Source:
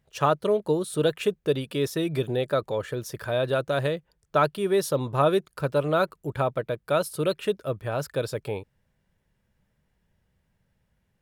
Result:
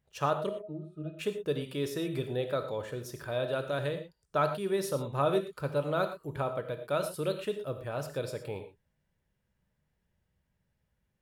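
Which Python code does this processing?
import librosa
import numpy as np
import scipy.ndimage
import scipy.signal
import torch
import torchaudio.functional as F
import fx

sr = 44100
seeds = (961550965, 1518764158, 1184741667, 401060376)

y = fx.octave_resonator(x, sr, note='D#', decay_s=0.15, at=(0.49, 1.19))
y = fx.rev_gated(y, sr, seeds[0], gate_ms=140, shape='flat', drr_db=7.0)
y = F.gain(torch.from_numpy(y), -7.5).numpy()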